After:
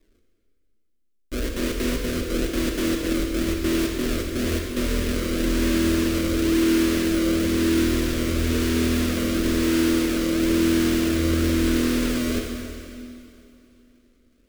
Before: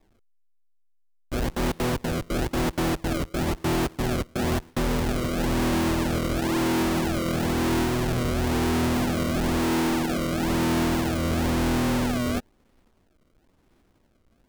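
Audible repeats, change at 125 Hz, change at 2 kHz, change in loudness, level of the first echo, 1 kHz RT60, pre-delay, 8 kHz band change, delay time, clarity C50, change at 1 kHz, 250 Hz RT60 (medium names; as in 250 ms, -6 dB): no echo, -1.0 dB, +1.5 dB, +2.5 dB, no echo, 2.6 s, 14 ms, +4.0 dB, no echo, 2.5 dB, -7.0 dB, 2.7 s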